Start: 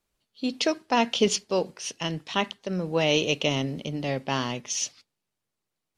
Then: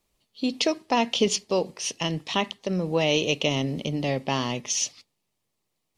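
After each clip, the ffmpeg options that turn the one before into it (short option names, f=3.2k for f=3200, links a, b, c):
-af "equalizer=f=1.5k:t=o:w=0.25:g=-11,acompressor=threshold=-33dB:ratio=1.5,volume=5.5dB"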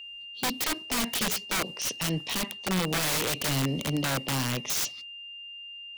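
-filter_complex "[0:a]aeval=exprs='val(0)+0.01*sin(2*PI*2800*n/s)':c=same,acrossover=split=170[a][b];[b]aeval=exprs='(mod(13.3*val(0)+1,2)-1)/13.3':c=same[c];[a][c]amix=inputs=2:normalize=0"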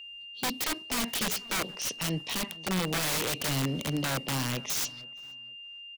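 -filter_complex "[0:a]asplit=2[a][b];[b]adelay=473,lowpass=f=1.8k:p=1,volume=-20.5dB,asplit=2[c][d];[d]adelay=473,lowpass=f=1.8k:p=1,volume=0.25[e];[a][c][e]amix=inputs=3:normalize=0,volume=-2dB"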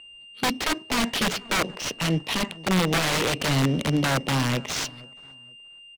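-af "adynamicsmooth=sensitivity=8:basefreq=1.1k,volume=8dB"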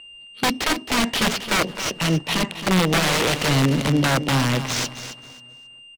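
-af "aecho=1:1:268|536|804:0.282|0.062|0.0136,volume=3.5dB"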